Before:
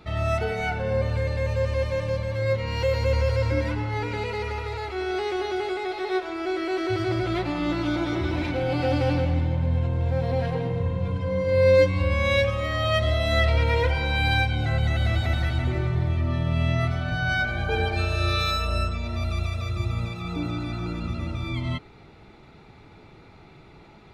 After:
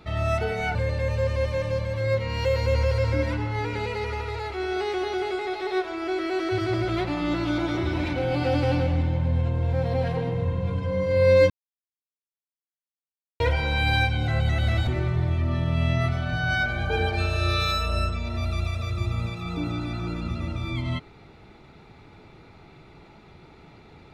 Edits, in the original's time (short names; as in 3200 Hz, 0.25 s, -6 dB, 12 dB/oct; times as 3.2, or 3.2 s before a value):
0.75–1.13 cut
11.88–13.78 mute
15.25–15.66 cut